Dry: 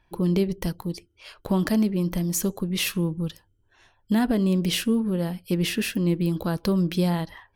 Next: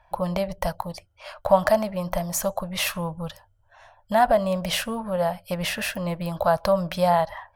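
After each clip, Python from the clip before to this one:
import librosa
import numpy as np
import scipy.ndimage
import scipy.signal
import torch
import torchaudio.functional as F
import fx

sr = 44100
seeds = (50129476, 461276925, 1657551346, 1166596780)

y = fx.curve_eq(x, sr, hz=(100.0, 390.0, 590.0, 2900.0), db=(0, -21, 14, -3))
y = F.gain(torch.from_numpy(y), 3.0).numpy()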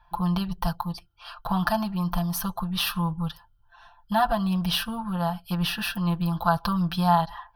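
y = fx.fixed_phaser(x, sr, hz=2100.0, stages=6)
y = y + 0.9 * np.pad(y, (int(5.8 * sr / 1000.0), 0))[:len(y)]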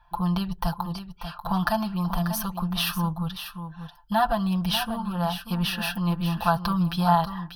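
y = x + 10.0 ** (-10.0 / 20.0) * np.pad(x, (int(589 * sr / 1000.0), 0))[:len(x)]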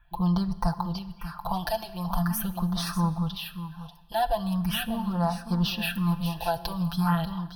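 y = fx.phaser_stages(x, sr, stages=4, low_hz=200.0, high_hz=3200.0, hz=0.42, feedback_pct=0)
y = fx.rev_schroeder(y, sr, rt60_s=1.5, comb_ms=27, drr_db=16.0)
y = F.gain(torch.from_numpy(y), 1.0).numpy()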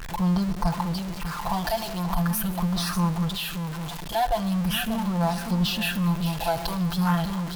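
y = x + 0.5 * 10.0 ** (-29.5 / 20.0) * np.sign(x)
y = fx.vibrato(y, sr, rate_hz=0.74, depth_cents=22.0)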